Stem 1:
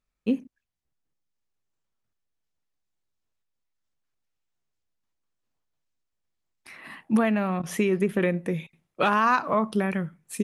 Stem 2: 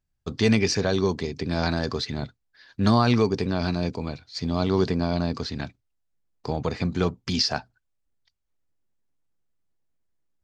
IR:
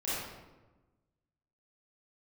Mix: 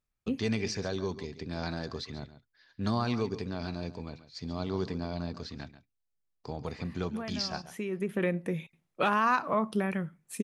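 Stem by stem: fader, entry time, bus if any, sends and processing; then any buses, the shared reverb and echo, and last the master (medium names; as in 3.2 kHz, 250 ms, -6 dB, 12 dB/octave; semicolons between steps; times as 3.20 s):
-4.5 dB, 0.00 s, no send, no echo send, auto duck -11 dB, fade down 0.95 s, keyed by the second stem
-10.5 dB, 0.00 s, no send, echo send -14 dB, none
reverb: none
echo: delay 138 ms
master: none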